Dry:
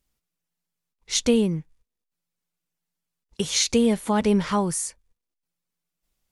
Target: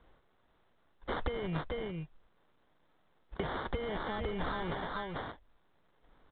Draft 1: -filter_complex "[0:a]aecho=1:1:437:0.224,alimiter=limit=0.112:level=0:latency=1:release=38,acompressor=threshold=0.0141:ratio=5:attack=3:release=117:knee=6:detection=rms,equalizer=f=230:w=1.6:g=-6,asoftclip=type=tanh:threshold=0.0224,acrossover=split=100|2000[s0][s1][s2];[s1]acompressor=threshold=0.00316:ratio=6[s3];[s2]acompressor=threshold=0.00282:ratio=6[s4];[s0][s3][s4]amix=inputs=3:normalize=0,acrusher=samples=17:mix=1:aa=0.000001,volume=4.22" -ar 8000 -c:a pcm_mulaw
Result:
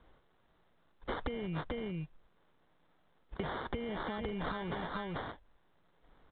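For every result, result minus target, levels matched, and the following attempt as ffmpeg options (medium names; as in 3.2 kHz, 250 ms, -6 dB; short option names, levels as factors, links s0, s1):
compression: peak gain reduction +13.5 dB; 250 Hz band +2.5 dB
-filter_complex "[0:a]aecho=1:1:437:0.224,alimiter=limit=0.112:level=0:latency=1:release=38,equalizer=f=230:w=1.6:g=-6,asoftclip=type=tanh:threshold=0.0224,acrossover=split=100|2000[s0][s1][s2];[s1]acompressor=threshold=0.00316:ratio=6[s3];[s2]acompressor=threshold=0.00282:ratio=6[s4];[s0][s3][s4]amix=inputs=3:normalize=0,acrusher=samples=17:mix=1:aa=0.000001,volume=4.22" -ar 8000 -c:a pcm_mulaw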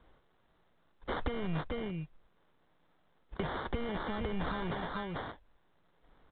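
250 Hz band +2.5 dB
-filter_complex "[0:a]aecho=1:1:437:0.224,alimiter=limit=0.112:level=0:latency=1:release=38,equalizer=f=230:w=1.6:g=-16.5,asoftclip=type=tanh:threshold=0.0224,acrossover=split=100|2000[s0][s1][s2];[s1]acompressor=threshold=0.00316:ratio=6[s3];[s2]acompressor=threshold=0.00282:ratio=6[s4];[s0][s3][s4]amix=inputs=3:normalize=0,acrusher=samples=17:mix=1:aa=0.000001,volume=4.22" -ar 8000 -c:a pcm_mulaw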